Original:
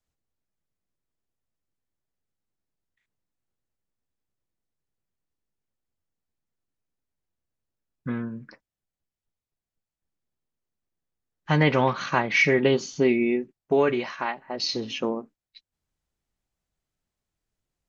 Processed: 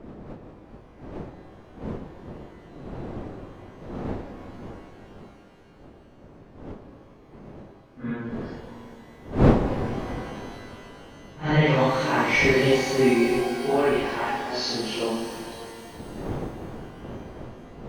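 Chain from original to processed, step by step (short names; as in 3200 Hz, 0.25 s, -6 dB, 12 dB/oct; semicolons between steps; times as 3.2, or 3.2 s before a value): phase scrambler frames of 0.2 s; wind noise 370 Hz -34 dBFS; shimmer reverb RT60 3.1 s, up +12 st, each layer -8 dB, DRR 5.5 dB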